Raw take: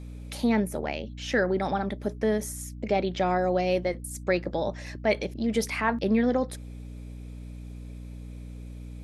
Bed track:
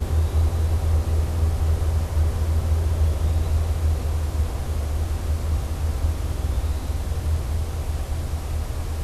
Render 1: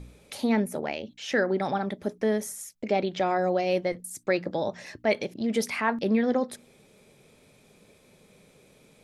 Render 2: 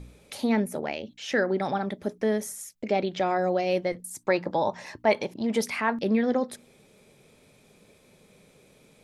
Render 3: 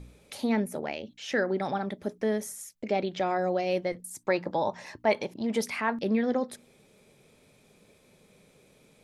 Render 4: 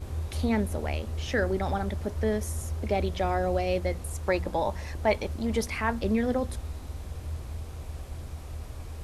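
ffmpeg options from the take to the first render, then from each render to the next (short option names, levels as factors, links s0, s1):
-af "bandreject=f=60:t=h:w=4,bandreject=f=120:t=h:w=4,bandreject=f=180:t=h:w=4,bandreject=f=240:t=h:w=4,bandreject=f=300:t=h:w=4"
-filter_complex "[0:a]asettb=1/sr,asplit=3[s0][s1][s2];[s0]atrim=end=4.054[s3];[s1]atrim=start=4.05:end=5.61,asetpts=PTS-STARTPTS,afade=t=in:d=0.004:c=qsin,afade=t=out:st=1.556:d=0.004:c=qsin,equalizer=f=940:t=o:w=0.53:g=12[s4];[s2]atrim=start=5.606[s5];[s3][s4]acrossfade=d=0.004:c1=hsin:c2=qsin[s6];[s6][s5]acrossfade=d=0.004:c1=qsin:c2=hsin"
-af "volume=0.75"
-filter_complex "[1:a]volume=0.251[s0];[0:a][s0]amix=inputs=2:normalize=0"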